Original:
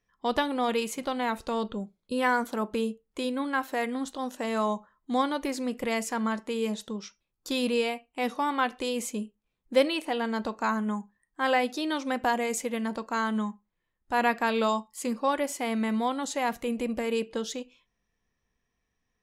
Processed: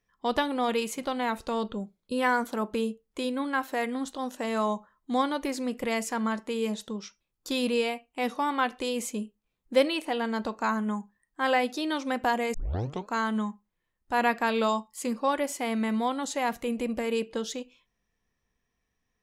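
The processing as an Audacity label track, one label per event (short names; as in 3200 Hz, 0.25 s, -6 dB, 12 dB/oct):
12.540000	12.540000	tape start 0.55 s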